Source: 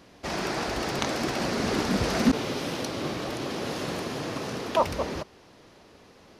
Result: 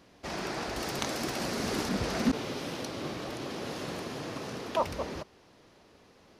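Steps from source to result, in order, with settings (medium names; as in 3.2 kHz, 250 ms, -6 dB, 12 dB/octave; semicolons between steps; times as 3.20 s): 0.76–1.89 s: treble shelf 7.4 kHz +10 dB; trim -5.5 dB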